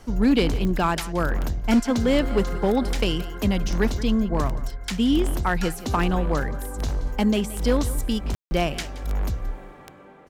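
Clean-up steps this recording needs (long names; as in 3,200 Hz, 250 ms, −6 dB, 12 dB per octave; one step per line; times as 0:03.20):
clipped peaks rebuilt −12.5 dBFS
click removal
ambience match 0:08.35–0:08.51
echo removal 174 ms −17 dB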